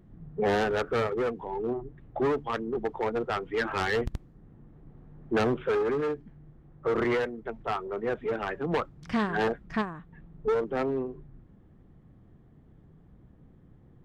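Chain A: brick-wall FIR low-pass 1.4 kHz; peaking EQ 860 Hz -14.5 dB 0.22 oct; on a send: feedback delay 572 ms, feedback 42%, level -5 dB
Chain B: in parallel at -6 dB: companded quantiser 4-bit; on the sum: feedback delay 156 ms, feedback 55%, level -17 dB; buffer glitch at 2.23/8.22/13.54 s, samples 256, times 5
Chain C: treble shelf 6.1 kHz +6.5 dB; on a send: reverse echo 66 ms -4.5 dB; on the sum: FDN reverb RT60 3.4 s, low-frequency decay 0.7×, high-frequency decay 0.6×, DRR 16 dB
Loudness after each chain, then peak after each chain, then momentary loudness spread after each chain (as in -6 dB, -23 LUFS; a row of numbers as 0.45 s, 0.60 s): -30.5 LUFS, -26.0 LUFS, -28.5 LUFS; -16.0 dBFS, -10.0 dBFS, -11.5 dBFS; 14 LU, 11 LU, 15 LU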